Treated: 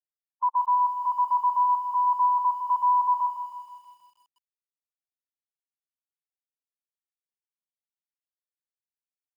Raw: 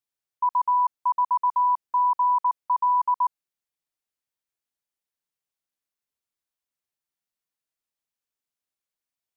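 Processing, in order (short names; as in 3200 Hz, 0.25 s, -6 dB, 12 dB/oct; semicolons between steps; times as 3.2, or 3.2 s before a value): per-bin expansion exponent 3; low-pass opened by the level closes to 720 Hz, open at -23.5 dBFS; lo-fi delay 0.16 s, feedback 55%, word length 10-bit, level -8.5 dB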